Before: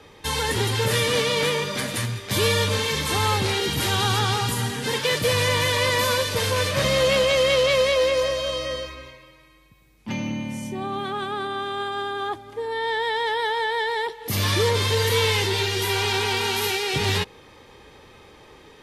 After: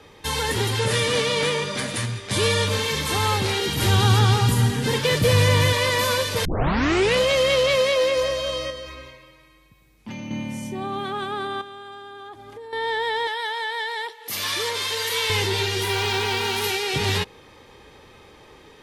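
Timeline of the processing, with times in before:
0.79–2.67 s: careless resampling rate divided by 2×, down none, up filtered
3.81–5.73 s: bass shelf 270 Hz +10.5 dB
6.45 s: tape start 0.76 s
7.76–8.17 s: high-pass 110 Hz
8.70–10.31 s: compression 3:1, threshold -32 dBFS
11.61–12.73 s: compression 12:1, threshold -35 dBFS
13.27–15.30 s: high-pass 1.1 kHz 6 dB/octave
15.82–16.64 s: decimation joined by straight lines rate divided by 2×

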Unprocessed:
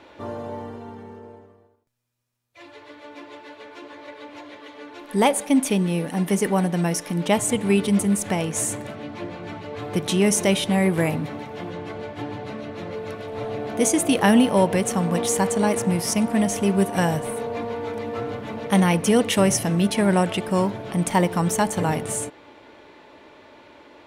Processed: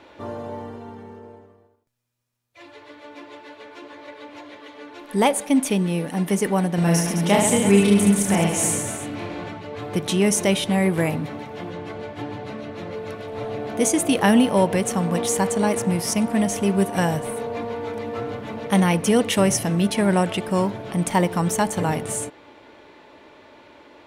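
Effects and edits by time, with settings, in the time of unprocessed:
6.75–9.49 s: reverse bouncing-ball echo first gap 30 ms, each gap 1.4×, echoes 5, each echo -2 dB

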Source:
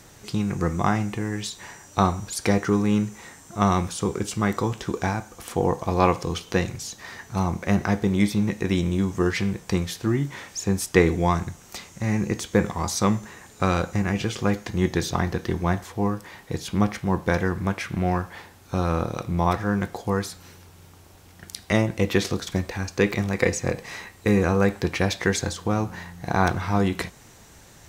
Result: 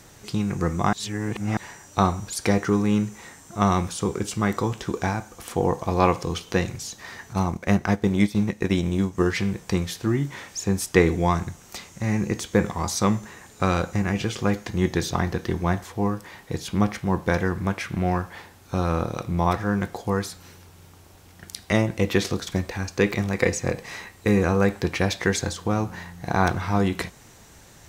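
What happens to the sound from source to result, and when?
0.93–1.57 s: reverse
7.33–9.26 s: transient shaper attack +2 dB, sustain -8 dB

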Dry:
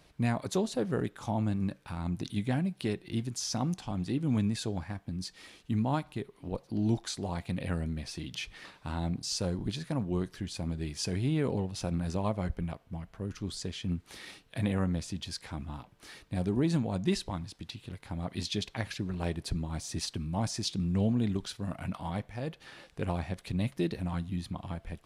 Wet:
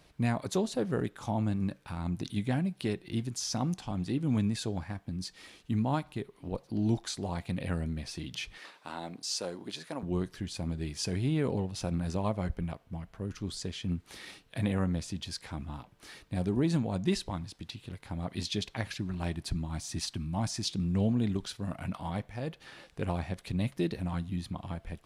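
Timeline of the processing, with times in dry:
8.58–10.03 s: high-pass 360 Hz
18.98–20.63 s: peaking EQ 470 Hz -13.5 dB 0.32 oct

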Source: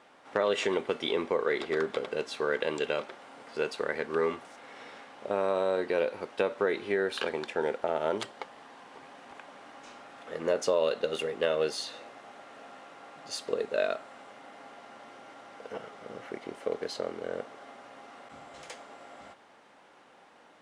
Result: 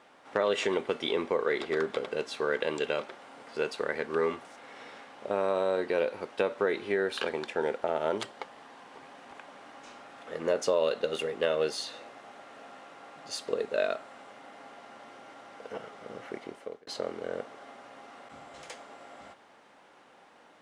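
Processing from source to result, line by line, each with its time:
16.39–16.87 s: fade out

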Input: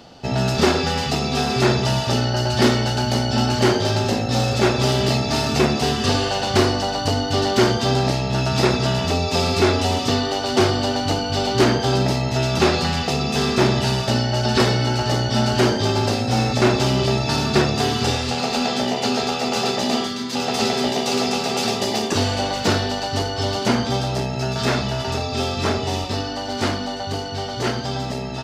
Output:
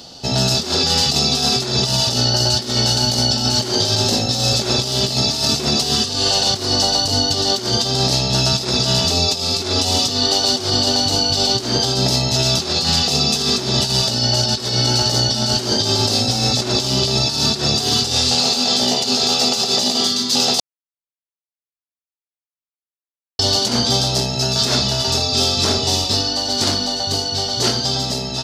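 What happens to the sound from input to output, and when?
20.60–23.39 s: mute
whole clip: resonant high shelf 3.1 kHz +10.5 dB, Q 1.5; compressor with a negative ratio -17 dBFS, ratio -0.5

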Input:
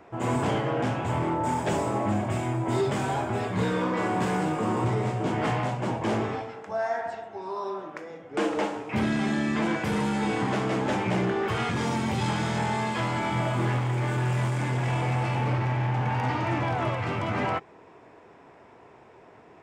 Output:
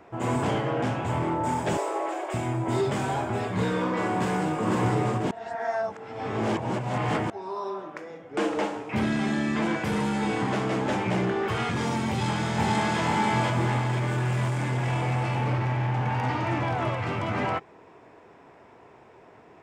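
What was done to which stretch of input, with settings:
1.77–2.34 s: steep high-pass 330 Hz 72 dB/octave
4.16–4.67 s: echo throw 500 ms, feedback 35%, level -2.5 dB
5.31–7.30 s: reverse
12.09–13.01 s: echo throw 490 ms, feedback 45%, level 0 dB

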